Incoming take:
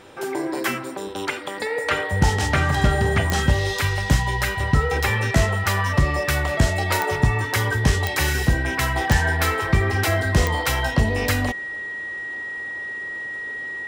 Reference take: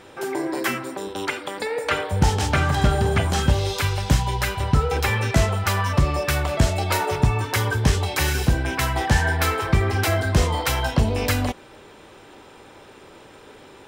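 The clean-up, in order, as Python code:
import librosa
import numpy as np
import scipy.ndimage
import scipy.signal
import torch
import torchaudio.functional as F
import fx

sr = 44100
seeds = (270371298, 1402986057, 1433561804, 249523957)

y = fx.fix_declick_ar(x, sr, threshold=10.0)
y = fx.notch(y, sr, hz=1900.0, q=30.0)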